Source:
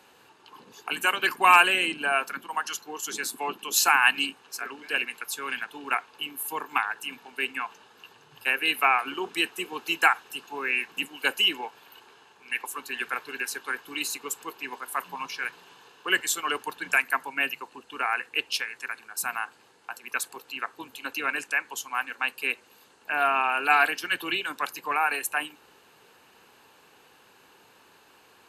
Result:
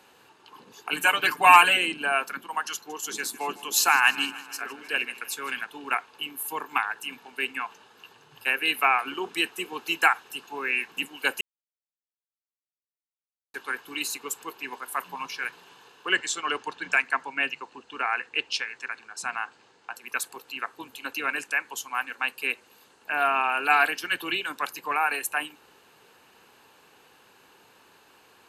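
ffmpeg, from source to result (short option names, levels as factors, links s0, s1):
-filter_complex "[0:a]asettb=1/sr,asplit=3[s0][s1][s2];[s0]atrim=end=0.924[s3];[s1]atrim=start=0.92:end=1.77,asetpts=PTS-STARTPTS,afade=t=in:d=0.004:c=qsin,afade=t=out:st=0.846:d=0.004:c=qsin,aecho=1:1:6.7:0.98,atrim=end_sample=37485[s4];[s2]atrim=start=1.766[s5];[s3][s4]acrossfade=d=0.004:c1=hsin:c2=qsin[s6];[s6][s5]acrossfade=d=0.004:c1=qsin:c2=hsin,asettb=1/sr,asplit=3[s7][s8][s9];[s7]atrim=end=2.744[s10];[s8]atrim=start=2.74:end=5.61,asetpts=PTS-STARTPTS,afade=t=in:d=0.004:c=qsin,afade=t=out:st=2.866:d=0.004:c=qsin,aecho=1:1:155|310|465|620|775:0.126|0.0755|0.0453|0.0272|0.0163,atrim=end_sample=126567[s11];[s9]atrim=start=5.606[s12];[s10][s11]acrossfade=d=0.004:c1=hsin:c2=qsin[s13];[s13][s12]acrossfade=d=0.004:c1=qsin:c2=hsin,asettb=1/sr,asplit=3[s14][s15][s16];[s14]atrim=end=16.084[s17];[s15]atrim=start=16.08:end=19.96,asetpts=PTS-STARTPTS,afade=t=in:d=0.004:c=qsin,afade=t=out:st=3.876:d=0.004:c=qsin,lowpass=f=7400:w=0.5412,lowpass=f=7400:w=1.3066[s18];[s16]atrim=start=19.956[s19];[s17][s18]acrossfade=d=0.004:c1=hsin:c2=qsin[s20];[s20][s19]acrossfade=d=0.004:c1=qsin:c2=hsin,asplit=3[s21][s22][s23];[s21]atrim=end=11.41,asetpts=PTS-STARTPTS,afade=t=out:st=11.406:d=0.004:c=hsin[s24];[s22]atrim=start=11.41:end=13.54,asetpts=PTS-STARTPTS,volume=0[s25];[s23]atrim=start=13.54,asetpts=PTS-STARTPTS,afade=t=in:d=0.004:c=hsin[s26];[s24][s25][s26]concat=n=3:v=0:a=1"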